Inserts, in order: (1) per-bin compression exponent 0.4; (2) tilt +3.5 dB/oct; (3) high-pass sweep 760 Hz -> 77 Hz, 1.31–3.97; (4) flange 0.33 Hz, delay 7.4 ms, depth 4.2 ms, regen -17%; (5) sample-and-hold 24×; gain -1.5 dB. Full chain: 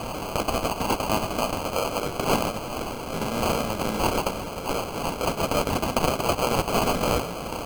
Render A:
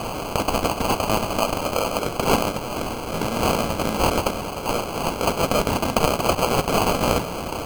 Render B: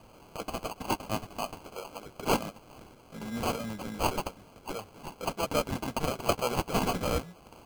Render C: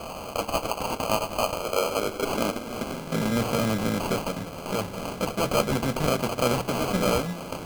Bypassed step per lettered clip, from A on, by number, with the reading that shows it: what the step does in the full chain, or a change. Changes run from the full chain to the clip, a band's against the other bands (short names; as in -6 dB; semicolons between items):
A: 4, loudness change +3.5 LU; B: 1, momentary loudness spread change +9 LU; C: 2, 1 kHz band -2.5 dB